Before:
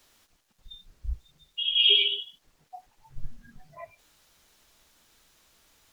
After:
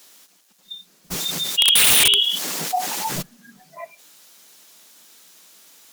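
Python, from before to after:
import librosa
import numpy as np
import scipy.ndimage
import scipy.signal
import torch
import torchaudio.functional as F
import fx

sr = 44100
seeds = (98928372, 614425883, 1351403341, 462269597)

y = scipy.signal.sosfilt(scipy.signal.ellip(4, 1.0, 40, 170.0, 'highpass', fs=sr, output='sos'), x)
y = fx.high_shelf(y, sr, hz=4200.0, db=10.5)
y = (np.mod(10.0 ** (17.5 / 20.0) * y + 1.0, 2.0) - 1.0) / 10.0 ** (17.5 / 20.0)
y = fx.env_flatten(y, sr, amount_pct=70, at=(1.1, 3.21), fade=0.02)
y = y * librosa.db_to_amplitude(7.5)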